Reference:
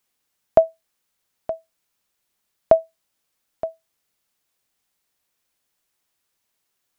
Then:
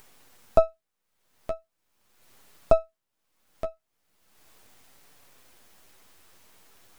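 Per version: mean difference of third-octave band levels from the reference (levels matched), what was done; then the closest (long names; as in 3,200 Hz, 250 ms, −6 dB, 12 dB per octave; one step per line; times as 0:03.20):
3.5 dB: gain on one half-wave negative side −12 dB
high-shelf EQ 2,000 Hz −8 dB
upward compression, threshold −32 dBFS
flanger 0.39 Hz, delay 6.7 ms, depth 5 ms, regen −29%
level +2.5 dB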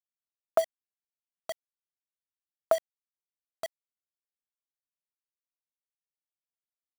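8.0 dB: high-pass filter 950 Hz 6 dB per octave
parametric band 1,300 Hz +14.5 dB 0.41 octaves
pitch vibrato 2 Hz 6.7 cents
bit reduction 5 bits
level −6 dB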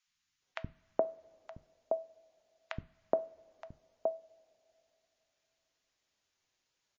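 15.0 dB: downward compressor 16 to 1, threshold −23 dBFS, peak gain reduction 15.5 dB
three-band delay without the direct sound highs, lows, mids 70/420 ms, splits 220/1,100 Hz
coupled-rooms reverb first 0.35 s, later 3.1 s, from −20 dB, DRR 13.5 dB
level −2 dB
MP3 32 kbit/s 16,000 Hz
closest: first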